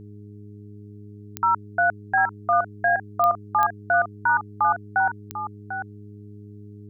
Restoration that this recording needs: de-click; de-hum 103.4 Hz, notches 4; inverse comb 745 ms -10.5 dB

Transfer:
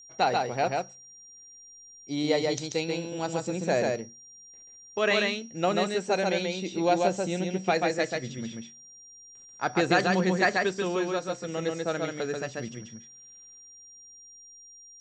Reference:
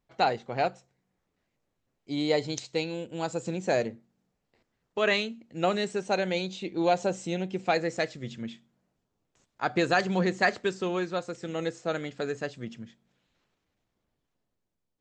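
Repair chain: band-stop 5.7 kHz, Q 30; inverse comb 137 ms -3 dB

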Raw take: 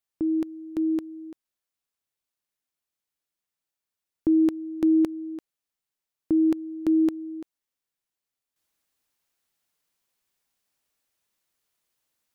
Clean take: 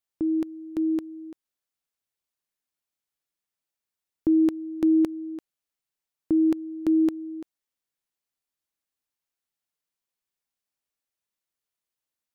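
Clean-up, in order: trim 0 dB, from 8.56 s -9.5 dB

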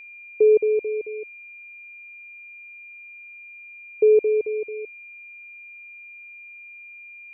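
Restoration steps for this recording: band-stop 2.4 kHz, Q 30; noise print and reduce 27 dB

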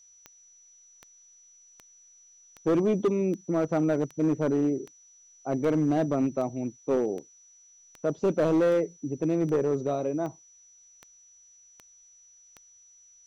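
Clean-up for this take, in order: clip repair -19 dBFS; de-click; band-stop 5.9 kHz, Q 30; expander -49 dBFS, range -21 dB

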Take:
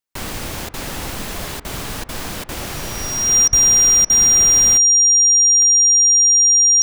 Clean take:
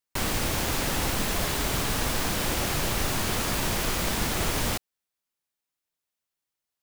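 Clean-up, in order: de-click; band-stop 5.7 kHz, Q 30; de-plosive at 3.49 s; interpolate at 0.69/1.60/2.04/2.44/3.48/4.05 s, 47 ms

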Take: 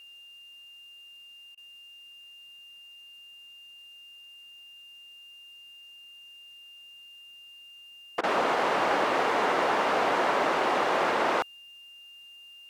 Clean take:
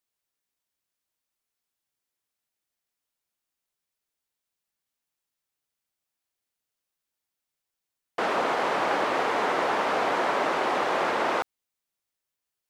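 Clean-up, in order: clip repair -16 dBFS; band-stop 2.8 kHz, Q 30; interpolate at 1.55/8.21 s, 23 ms; expander -42 dBFS, range -21 dB

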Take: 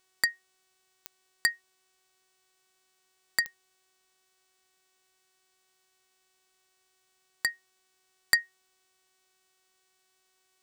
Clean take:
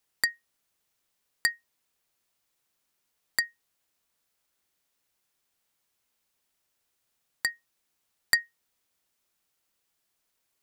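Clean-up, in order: de-click; de-hum 374.6 Hz, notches 25

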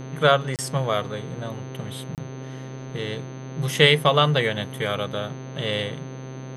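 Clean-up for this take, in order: de-hum 131.2 Hz, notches 35; band-stop 6.2 kHz, Q 30; interpolate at 0.56/2.15 s, 28 ms; noise print and reduce 30 dB

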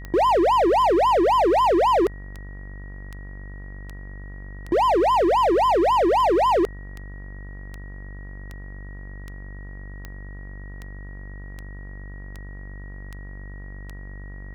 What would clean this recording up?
de-click; de-hum 48.6 Hz, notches 39; band-stop 1.9 kHz, Q 30

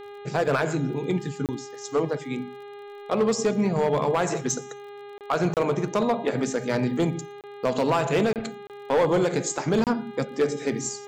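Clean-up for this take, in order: clip repair -16 dBFS; de-click; de-hum 407.2 Hz, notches 10; interpolate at 1.46/5.18/5.54/7.41/8.33/8.67/9.84 s, 28 ms

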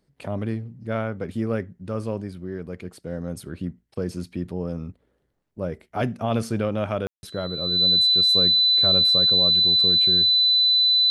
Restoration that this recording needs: band-stop 4 kHz, Q 30; room tone fill 7.07–7.23 s

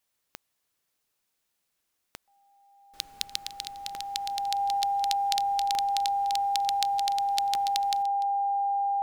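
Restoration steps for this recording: de-click; band-stop 800 Hz, Q 30; inverse comb 294 ms -19 dB

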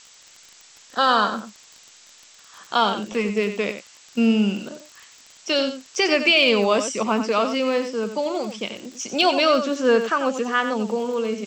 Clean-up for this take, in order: clip repair -7 dBFS; de-click; noise print and reduce 17 dB; inverse comb 92 ms -9.5 dB

